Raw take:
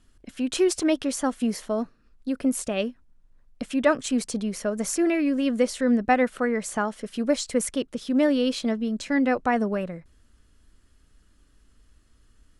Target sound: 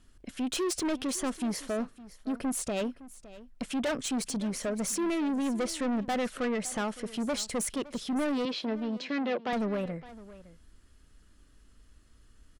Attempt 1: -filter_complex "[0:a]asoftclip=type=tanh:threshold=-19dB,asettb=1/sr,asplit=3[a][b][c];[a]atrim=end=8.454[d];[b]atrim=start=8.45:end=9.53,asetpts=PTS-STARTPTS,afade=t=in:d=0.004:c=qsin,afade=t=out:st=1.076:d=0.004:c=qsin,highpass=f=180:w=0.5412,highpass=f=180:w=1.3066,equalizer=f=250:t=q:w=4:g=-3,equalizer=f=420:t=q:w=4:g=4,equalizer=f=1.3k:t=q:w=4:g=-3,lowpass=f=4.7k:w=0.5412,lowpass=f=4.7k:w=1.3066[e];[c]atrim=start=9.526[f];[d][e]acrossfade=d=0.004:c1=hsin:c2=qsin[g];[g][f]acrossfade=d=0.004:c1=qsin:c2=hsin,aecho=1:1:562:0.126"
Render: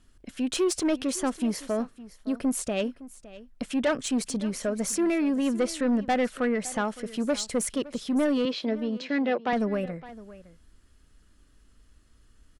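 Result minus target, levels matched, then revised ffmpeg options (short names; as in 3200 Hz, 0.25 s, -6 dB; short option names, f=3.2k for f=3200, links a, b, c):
soft clip: distortion -6 dB
-filter_complex "[0:a]asoftclip=type=tanh:threshold=-27dB,asettb=1/sr,asplit=3[a][b][c];[a]atrim=end=8.454[d];[b]atrim=start=8.45:end=9.53,asetpts=PTS-STARTPTS,afade=t=in:d=0.004:c=qsin,afade=t=out:st=1.076:d=0.004:c=qsin,highpass=f=180:w=0.5412,highpass=f=180:w=1.3066,equalizer=f=250:t=q:w=4:g=-3,equalizer=f=420:t=q:w=4:g=4,equalizer=f=1.3k:t=q:w=4:g=-3,lowpass=f=4.7k:w=0.5412,lowpass=f=4.7k:w=1.3066[e];[c]atrim=start=9.526[f];[d][e]acrossfade=d=0.004:c1=hsin:c2=qsin[g];[g][f]acrossfade=d=0.004:c1=qsin:c2=hsin,aecho=1:1:562:0.126"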